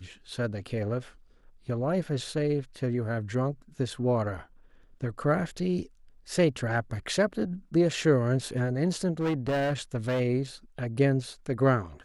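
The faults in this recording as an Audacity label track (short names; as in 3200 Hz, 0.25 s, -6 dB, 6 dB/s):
9.200000	10.210000	clipped -24 dBFS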